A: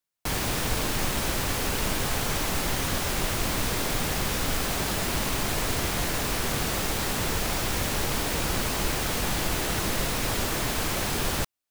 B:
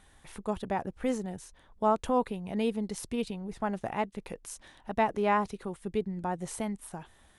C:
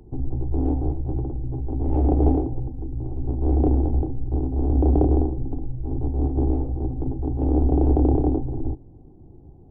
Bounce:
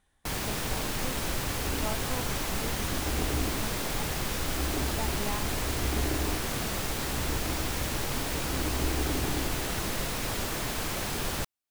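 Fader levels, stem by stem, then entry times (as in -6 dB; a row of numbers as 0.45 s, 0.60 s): -4.5 dB, -12.0 dB, -14.0 dB; 0.00 s, 0.00 s, 1.10 s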